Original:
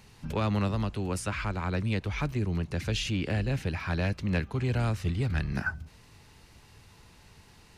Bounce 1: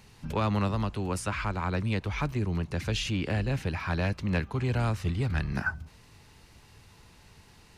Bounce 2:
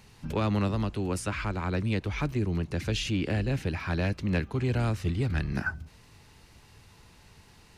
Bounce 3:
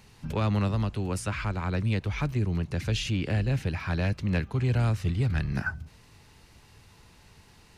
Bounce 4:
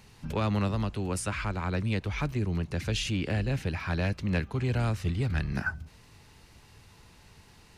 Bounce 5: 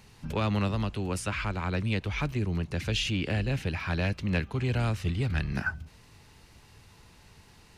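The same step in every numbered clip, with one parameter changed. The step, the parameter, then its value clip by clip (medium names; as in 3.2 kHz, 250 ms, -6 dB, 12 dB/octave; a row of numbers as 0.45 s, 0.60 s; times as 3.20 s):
dynamic bell, frequency: 1 kHz, 320 Hz, 120 Hz, 9 kHz, 2.9 kHz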